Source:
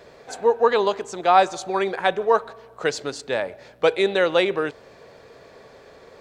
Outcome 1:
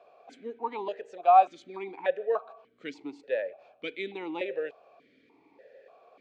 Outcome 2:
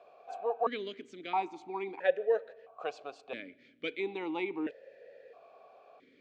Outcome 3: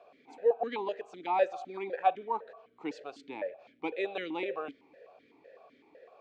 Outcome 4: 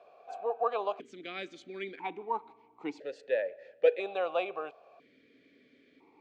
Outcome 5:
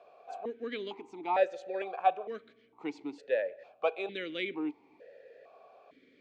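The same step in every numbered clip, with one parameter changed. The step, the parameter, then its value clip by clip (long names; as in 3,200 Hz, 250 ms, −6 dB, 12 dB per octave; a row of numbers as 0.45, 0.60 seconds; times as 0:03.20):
formant filter that steps through the vowels, speed: 3.4, 1.5, 7.9, 1, 2.2 Hertz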